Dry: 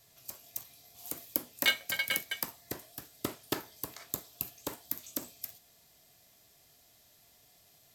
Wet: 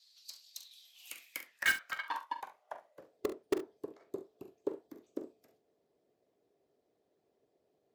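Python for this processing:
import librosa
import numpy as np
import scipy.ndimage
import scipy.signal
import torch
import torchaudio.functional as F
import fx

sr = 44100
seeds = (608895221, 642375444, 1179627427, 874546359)

p1 = fx.high_shelf(x, sr, hz=6200.0, db=9.5, at=(0.71, 1.4))
p2 = fx.ring_mod(p1, sr, carrier_hz=1300.0, at=(2.05, 2.99))
p3 = fx.filter_sweep_bandpass(p2, sr, from_hz=4300.0, to_hz=400.0, start_s=0.53, end_s=3.35, q=6.3)
p4 = (np.mod(10.0 ** (34.0 / 20.0) * p3 + 1.0, 2.0) - 1.0) / 10.0 ** (34.0 / 20.0)
p5 = p3 + (p4 * 10.0 ** (-8.0 / 20.0))
p6 = fx.hpss(p5, sr, part='harmonic', gain_db=-11)
p7 = p6 + fx.room_early_taps(p6, sr, ms=(44, 69), db=(-11.5, -15.0), dry=0)
y = p7 * 10.0 ** (10.0 / 20.0)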